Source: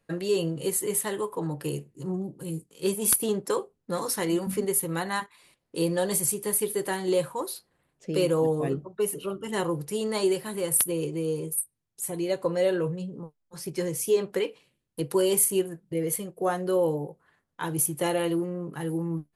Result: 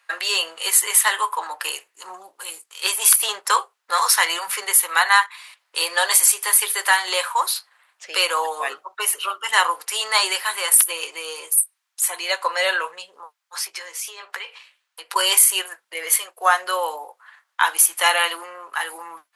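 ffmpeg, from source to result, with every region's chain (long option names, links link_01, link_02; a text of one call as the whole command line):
ffmpeg -i in.wav -filter_complex "[0:a]asettb=1/sr,asplit=3[link_01][link_02][link_03];[link_01]atrim=end=13.654[link_04];[link_02]atrim=start=13.65:end=15.16,asetpts=PTS-STARTPTS,afade=type=in:duration=0.004:curve=qsin,afade=type=out:start_time=1.506:duration=0.004:curve=qsin,equalizer=frequency=11000:width=0.92:gain=-6,acompressor=threshold=-39dB:ratio=4:attack=3.2:release=140:knee=1:detection=peak,asplit=2[link_05][link_06];[link_06]adelay=15,volume=-11.5dB[link_07];[link_05][link_07]amix=inputs=2:normalize=0,atrim=end_sample=66591[link_08];[link_03]atrim=start=15.156[link_09];[link_04][link_08]acrossfade=duration=0.004:curve1=hsin:curve2=qsin[link_10];[link_10][link_09]acrossfade=duration=0.004:curve1=qsin:curve2=hsin,highpass=frequency=1000:width=0.5412,highpass=frequency=1000:width=1.3066,highshelf=frequency=6900:gain=-9.5,alimiter=level_in=20dB:limit=-1dB:release=50:level=0:latency=1,volume=-1dB" out.wav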